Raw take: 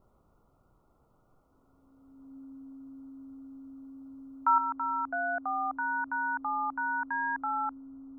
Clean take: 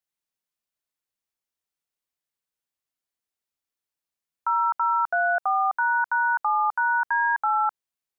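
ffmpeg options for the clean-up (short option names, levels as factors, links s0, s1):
-af "bandreject=f=270:w=30,agate=range=0.0891:threshold=0.00112,asetnsamples=n=441:p=0,asendcmd='4.58 volume volume 9dB',volume=1"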